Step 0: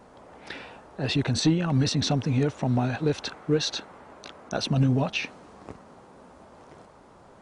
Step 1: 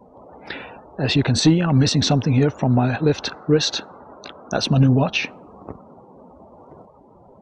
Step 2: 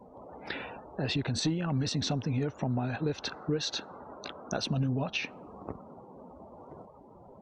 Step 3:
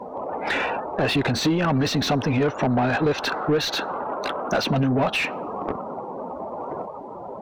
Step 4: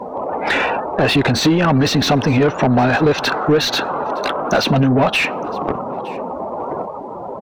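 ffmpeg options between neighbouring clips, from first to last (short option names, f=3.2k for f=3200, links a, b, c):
-af "afftdn=nr=27:nf=-47,volume=7dB"
-af "acompressor=threshold=-28dB:ratio=2.5,volume=-4dB"
-filter_complex "[0:a]asplit=2[a][b];[b]highpass=f=720:p=1,volume=23dB,asoftclip=type=tanh:threshold=-17dB[c];[a][c]amix=inputs=2:normalize=0,lowpass=f=1.8k:p=1,volume=-6dB,volume=5.5dB"
-af "aecho=1:1:915:0.075,volume=7dB"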